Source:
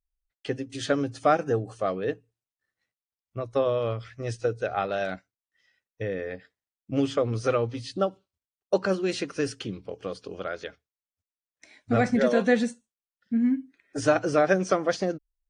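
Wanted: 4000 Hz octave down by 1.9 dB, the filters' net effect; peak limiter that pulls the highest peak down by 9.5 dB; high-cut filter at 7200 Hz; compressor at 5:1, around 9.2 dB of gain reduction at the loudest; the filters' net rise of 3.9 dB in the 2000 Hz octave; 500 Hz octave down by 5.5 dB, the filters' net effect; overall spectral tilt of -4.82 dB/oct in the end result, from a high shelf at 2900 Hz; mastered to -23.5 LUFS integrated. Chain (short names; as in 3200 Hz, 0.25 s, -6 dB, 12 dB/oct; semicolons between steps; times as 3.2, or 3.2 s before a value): LPF 7200 Hz; bell 500 Hz -7 dB; bell 2000 Hz +6 dB; high shelf 2900 Hz +3 dB; bell 4000 Hz -6.5 dB; compressor 5:1, threshold -29 dBFS; gain +13.5 dB; limiter -11 dBFS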